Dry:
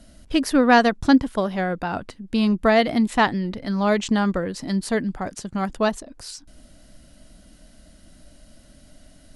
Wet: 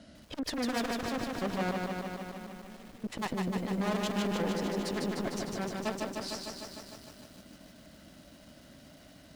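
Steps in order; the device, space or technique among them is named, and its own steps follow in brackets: valve radio (BPF 100–5100 Hz; tube stage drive 31 dB, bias 0.65; core saturation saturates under 330 Hz); 1.71–3.04 passive tone stack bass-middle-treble 10-0-1; lo-fi delay 0.151 s, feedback 80%, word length 10-bit, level -3 dB; gain +3 dB

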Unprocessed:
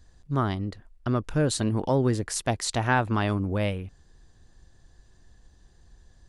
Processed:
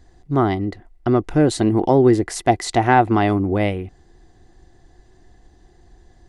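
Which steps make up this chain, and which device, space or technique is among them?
inside a helmet (high shelf 5100 Hz -4.5 dB; small resonant body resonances 350/730/2000 Hz, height 12 dB, ringing for 30 ms); gain +4 dB

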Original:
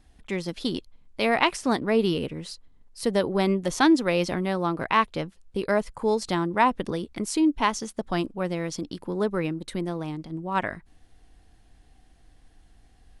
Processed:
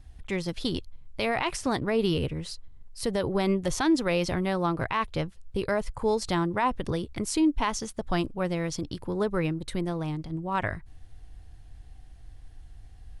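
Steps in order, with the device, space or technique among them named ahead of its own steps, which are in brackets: car stereo with a boomy subwoofer (resonant low shelf 150 Hz +9 dB, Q 1.5; limiter -16 dBFS, peak gain reduction 11 dB)

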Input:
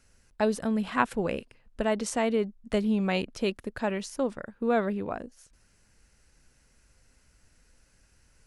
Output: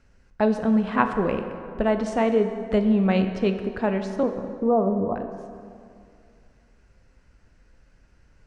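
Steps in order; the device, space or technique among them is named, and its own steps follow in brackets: 4.23–5.16 steep low-pass 1200 Hz 96 dB/oct; air absorption 97 m; behind a face mask (high shelf 2300 Hz -8 dB); plate-style reverb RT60 2.4 s, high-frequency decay 0.6×, DRR 6.5 dB; gain +5.5 dB

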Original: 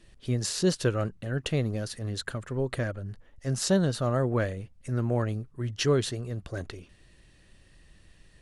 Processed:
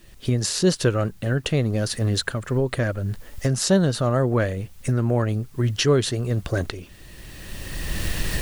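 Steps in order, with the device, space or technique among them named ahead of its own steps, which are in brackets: cheap recorder with automatic gain (white noise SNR 38 dB; recorder AGC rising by 18 dB/s); gain +5.5 dB

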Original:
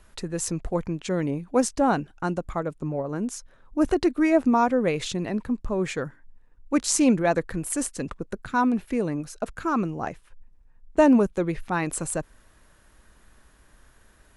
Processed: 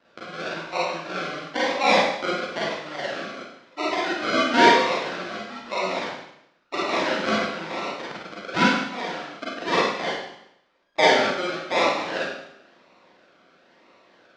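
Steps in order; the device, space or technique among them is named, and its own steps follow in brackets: graphic EQ 250/500/1000/2000 Hz -11/-5/+9/+5 dB; circuit-bent sampling toy (decimation with a swept rate 38×, swing 60% 0.99 Hz; speaker cabinet 420–5000 Hz, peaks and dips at 440 Hz -7 dB, 840 Hz -4 dB, 1400 Hz +4 dB); Schroeder reverb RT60 0.78 s, combs from 33 ms, DRR -7 dB; gain -1 dB

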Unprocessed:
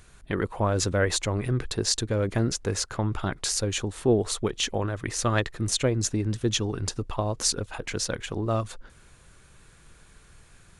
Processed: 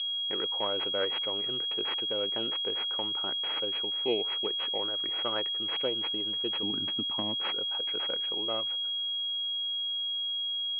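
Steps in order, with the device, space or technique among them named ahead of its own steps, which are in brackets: toy sound module (decimation joined by straight lines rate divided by 4×; pulse-width modulation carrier 3300 Hz; speaker cabinet 570–4200 Hz, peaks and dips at 680 Hz -7 dB, 1100 Hz -7 dB, 1700 Hz -6 dB, 2800 Hz +8 dB); 6.63–7.39 resonant low shelf 340 Hz +9.5 dB, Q 3

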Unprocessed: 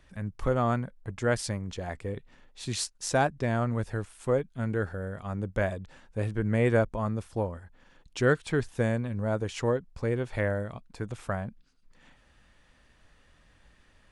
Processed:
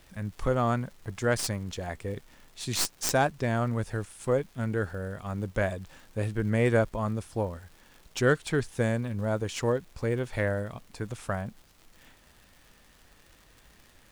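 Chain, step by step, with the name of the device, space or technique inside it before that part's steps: high shelf 4100 Hz +6.5 dB; record under a worn stylus (tracing distortion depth 0.057 ms; crackle 140/s -44 dBFS; pink noise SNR 32 dB)

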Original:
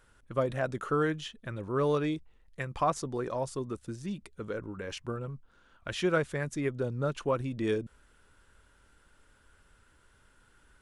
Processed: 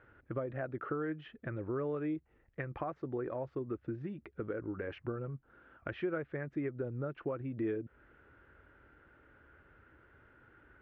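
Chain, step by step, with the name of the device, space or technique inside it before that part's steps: bass amplifier (compressor 4:1, threshold -41 dBFS, peak gain reduction 15.5 dB; speaker cabinet 70–2100 Hz, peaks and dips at 190 Hz -6 dB, 330 Hz +5 dB, 1000 Hz -7 dB); gain +4.5 dB

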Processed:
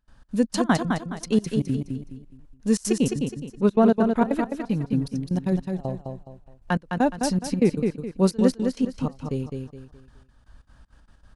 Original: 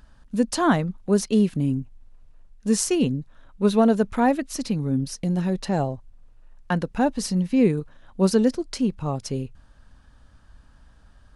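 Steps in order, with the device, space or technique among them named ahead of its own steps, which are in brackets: 2.91–4.22 high shelf 7000 Hz -11.5 dB; trance gate with a delay (step gate ".xx.xx.x.x.xx.." 195 bpm -24 dB; feedback echo 0.209 s, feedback 33%, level -5 dB)

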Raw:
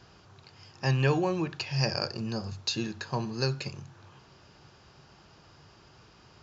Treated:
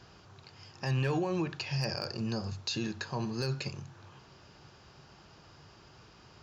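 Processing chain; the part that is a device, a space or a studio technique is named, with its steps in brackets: clipper into limiter (hard clip -17 dBFS, distortion -25 dB; limiter -23.5 dBFS, peak gain reduction 6.5 dB)

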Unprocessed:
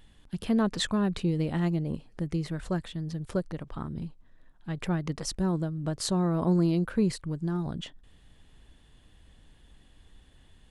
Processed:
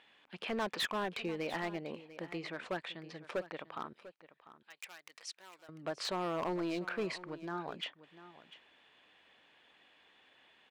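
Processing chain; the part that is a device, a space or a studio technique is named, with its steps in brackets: megaphone (BPF 590–3200 Hz; bell 2400 Hz +7 dB 0.32 oct; hard clip -33 dBFS, distortion -10 dB); 3.93–5.69 differentiator; echo 0.696 s -16 dB; gain +2.5 dB

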